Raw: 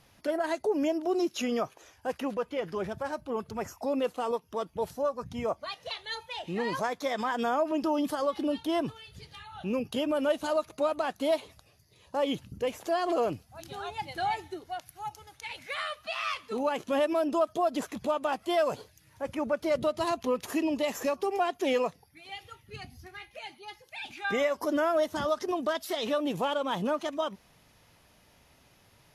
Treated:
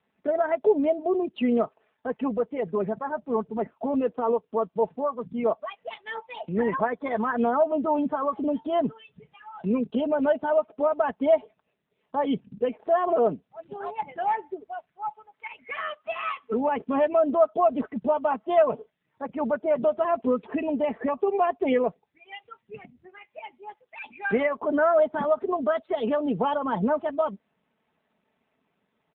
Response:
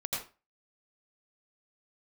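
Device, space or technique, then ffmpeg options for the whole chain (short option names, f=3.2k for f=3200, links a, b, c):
telephone: -af "afftdn=nr=13:nf=-39,highpass=320,lowpass=3.3k,bass=f=250:g=13,treble=f=4k:g=-13,aecho=1:1:4.6:0.65,volume=4dB" -ar 8000 -c:a libopencore_amrnb -b:a 7400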